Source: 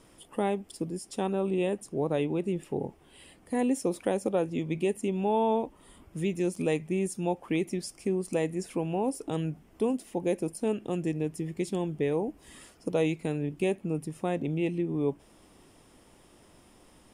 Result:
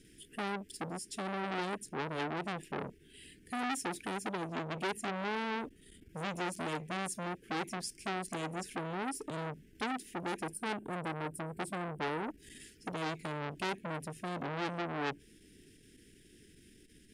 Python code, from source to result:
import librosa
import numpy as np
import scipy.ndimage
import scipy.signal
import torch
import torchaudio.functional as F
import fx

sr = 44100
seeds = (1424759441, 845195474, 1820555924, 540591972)

y = fx.spec_box(x, sr, start_s=10.55, length_s=1.62, low_hz=1600.0, high_hz=7500.0, gain_db=-13)
y = scipy.signal.sosfilt(scipy.signal.cheby1(4, 1.0, [440.0, 1600.0], 'bandstop', fs=sr, output='sos'), y)
y = fx.transformer_sat(y, sr, knee_hz=2500.0)